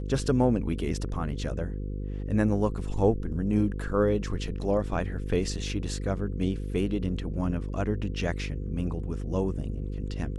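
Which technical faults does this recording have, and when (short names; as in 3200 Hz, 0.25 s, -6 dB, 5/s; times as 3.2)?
buzz 50 Hz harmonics 10 -33 dBFS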